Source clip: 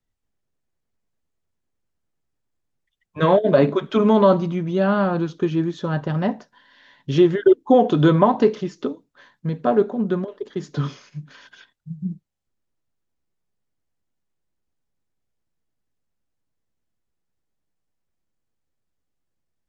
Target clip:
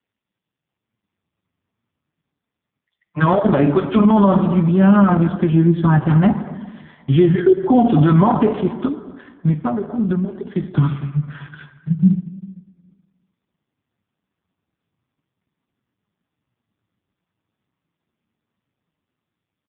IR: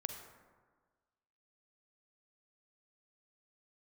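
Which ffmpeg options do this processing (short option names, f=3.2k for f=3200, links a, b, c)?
-filter_complex "[0:a]asplit=2[a][b];[b]adelay=233,lowpass=f=3k:p=1,volume=-22.5dB,asplit=2[c][d];[d]adelay=233,lowpass=f=3k:p=1,volume=0.31[e];[a][c][e]amix=inputs=3:normalize=0,acrossover=split=1700[f][g];[f]dynaudnorm=f=250:g=9:m=9dB[h];[h][g]amix=inputs=2:normalize=0,flanger=delay=4.2:depth=6.5:regen=58:speed=0.38:shape=sinusoidal,asettb=1/sr,asplit=3[i][j][k];[i]atrim=end=9.524[l];[j]atrim=start=9.52:end=10.51,asetpts=PTS-STARTPTS,afade=t=in:d=0.004:c=qsin,afade=t=out:st=0.986:d=0.004:c=qsin,acompressor=threshold=-24dB:ratio=16[m];[k]atrim=start=10.506[n];[l][m]acrossfade=d=0.004:c1=hsin:c2=qsin[o];[o][n]acrossfade=d=0.004:c1=qsin:c2=hsin,equalizer=f=480:w=1.9:g=-13,asplit=2[p][q];[1:a]atrim=start_sample=2205,lowpass=5.5k[r];[q][r]afir=irnorm=-1:irlink=0,volume=1.5dB[s];[p][s]amix=inputs=2:normalize=0,alimiter=level_in=9.5dB:limit=-1dB:release=50:level=0:latency=1,volume=-3.5dB" -ar 8000 -c:a libopencore_amrnb -b:a 5150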